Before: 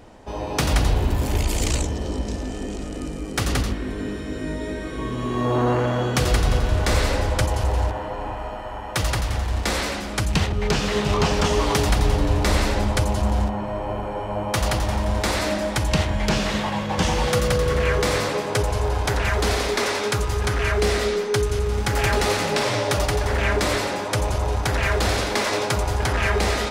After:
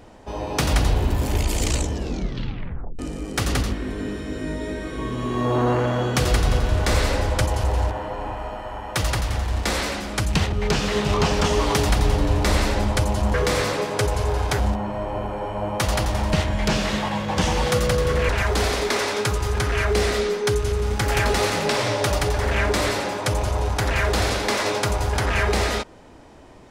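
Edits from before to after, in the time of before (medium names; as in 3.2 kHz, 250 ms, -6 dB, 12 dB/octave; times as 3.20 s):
1.94 s: tape stop 1.05 s
15.07–15.94 s: delete
17.90–19.16 s: move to 13.34 s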